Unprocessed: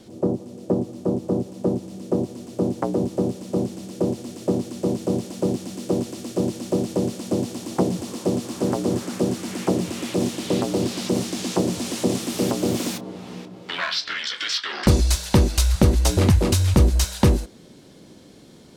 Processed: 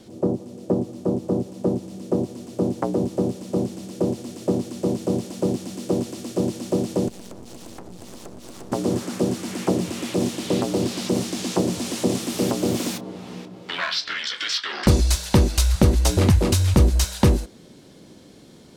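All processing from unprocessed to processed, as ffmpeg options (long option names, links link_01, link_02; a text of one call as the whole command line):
ffmpeg -i in.wav -filter_complex "[0:a]asettb=1/sr,asplit=3[link_01][link_02][link_03];[link_01]atrim=end=7.084[link_04];[link_02]atrim=start=7.08:end=8.72,asetpts=PTS-STARTPTS,afade=type=in:duration=0.004:curve=qsin,afade=type=out:start_time=1.636:duration=0.004:curve=qsin,aeval=exprs='max(val(0),0)':channel_layout=same,acompressor=threshold=-33dB:ratio=20:attack=3.2:release=140:knee=1:detection=peak[link_05];[link_03]atrim=start=8.716[link_06];[link_04][link_05]acrossfade=duration=0.004:curve1=hsin:curve2=qsin[link_07];[link_07][link_06]acrossfade=duration=0.004:curve1=qsin:curve2=hsin" out.wav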